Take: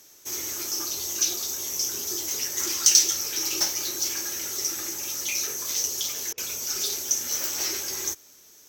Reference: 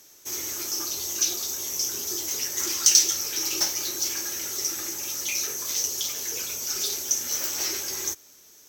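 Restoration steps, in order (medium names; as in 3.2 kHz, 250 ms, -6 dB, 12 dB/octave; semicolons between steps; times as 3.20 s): interpolate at 6.33 s, 46 ms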